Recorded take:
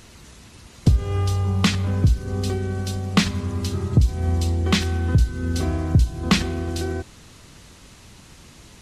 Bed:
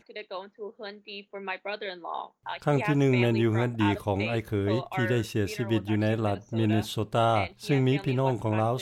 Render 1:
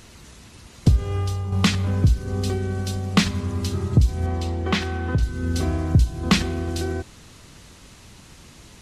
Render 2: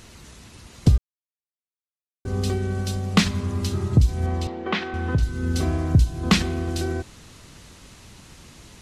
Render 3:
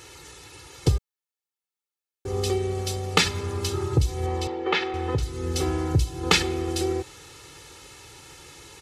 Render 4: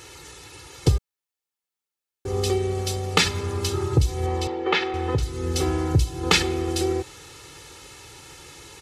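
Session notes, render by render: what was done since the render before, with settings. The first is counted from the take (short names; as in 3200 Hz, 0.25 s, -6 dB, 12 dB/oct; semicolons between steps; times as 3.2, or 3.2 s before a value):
0.97–1.52 fade out, to -7 dB; 4.26–5.23 overdrive pedal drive 10 dB, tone 1500 Hz, clips at -7 dBFS
0.98–2.25 mute; 4.47–4.94 BPF 250–3400 Hz
HPF 220 Hz 6 dB/oct; comb 2.3 ms, depth 98%
gain +2 dB; limiter -2 dBFS, peak gain reduction 2 dB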